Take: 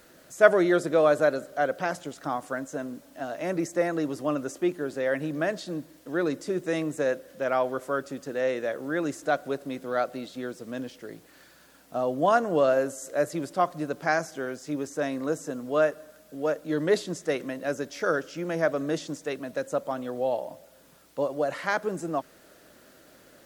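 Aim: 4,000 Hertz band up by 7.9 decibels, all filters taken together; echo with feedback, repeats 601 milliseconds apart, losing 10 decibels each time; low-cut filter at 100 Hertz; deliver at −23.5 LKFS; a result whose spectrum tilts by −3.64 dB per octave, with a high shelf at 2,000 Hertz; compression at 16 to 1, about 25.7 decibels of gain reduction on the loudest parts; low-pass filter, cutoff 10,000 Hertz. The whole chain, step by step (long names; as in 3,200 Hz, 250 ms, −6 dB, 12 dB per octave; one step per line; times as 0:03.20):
high-pass filter 100 Hz
low-pass filter 10,000 Hz
high-shelf EQ 2,000 Hz +5 dB
parametric band 4,000 Hz +5 dB
downward compressor 16 to 1, threshold −36 dBFS
repeating echo 601 ms, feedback 32%, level −10 dB
level +17.5 dB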